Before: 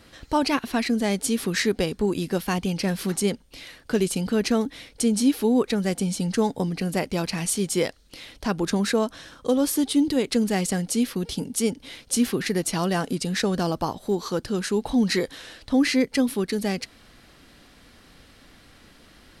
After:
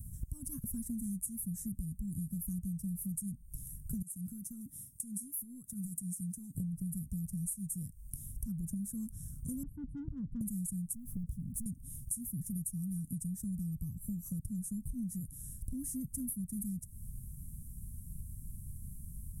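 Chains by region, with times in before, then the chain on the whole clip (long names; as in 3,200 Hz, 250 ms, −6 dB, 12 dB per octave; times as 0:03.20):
0:04.02–0:06.55: high-pass filter 120 Hz + low-shelf EQ 310 Hz −9.5 dB + downward compressor 12 to 1, threshold −35 dBFS
0:09.63–0:10.41: elliptic low-pass filter 820 Hz, stop band 50 dB + saturating transformer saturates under 1,200 Hz
0:10.93–0:11.66: low-pass filter 1,000 Hz 6 dB per octave + downward compressor 4 to 1, threshold −31 dBFS + leveller curve on the samples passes 3
whole clip: inverse Chebyshev band-stop filter 370–4,600 Hz, stop band 50 dB; downward compressor 10 to 1, threshold −49 dBFS; level +13 dB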